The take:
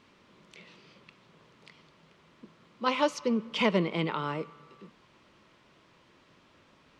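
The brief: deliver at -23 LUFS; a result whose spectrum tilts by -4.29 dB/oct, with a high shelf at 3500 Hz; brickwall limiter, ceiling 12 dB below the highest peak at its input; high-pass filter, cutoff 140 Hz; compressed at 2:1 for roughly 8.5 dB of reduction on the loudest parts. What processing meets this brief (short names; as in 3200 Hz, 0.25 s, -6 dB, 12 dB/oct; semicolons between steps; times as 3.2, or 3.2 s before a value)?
HPF 140 Hz; high shelf 3500 Hz +4.5 dB; compressor 2:1, threshold -36 dBFS; gain +20.5 dB; limiter -10 dBFS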